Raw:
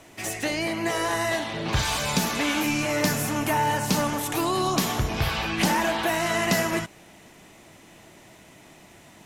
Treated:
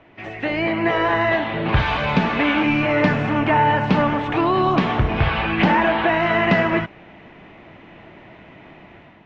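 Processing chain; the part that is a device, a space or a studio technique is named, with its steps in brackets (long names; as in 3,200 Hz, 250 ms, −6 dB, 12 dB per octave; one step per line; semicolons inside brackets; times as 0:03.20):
action camera in a waterproof case (low-pass filter 2,800 Hz 24 dB per octave; automatic gain control gain up to 7.5 dB; AAC 96 kbit/s 22,050 Hz)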